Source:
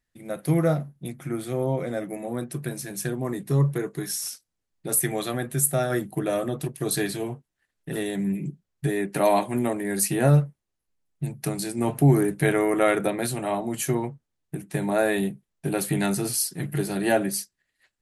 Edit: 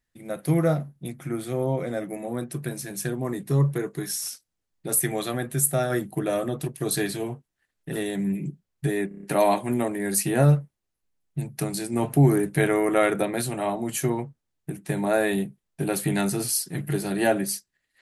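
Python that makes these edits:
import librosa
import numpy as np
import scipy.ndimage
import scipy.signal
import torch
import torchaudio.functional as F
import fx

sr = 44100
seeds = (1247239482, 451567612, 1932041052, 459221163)

y = fx.edit(x, sr, fx.stutter(start_s=9.08, slice_s=0.03, count=6), tone=tone)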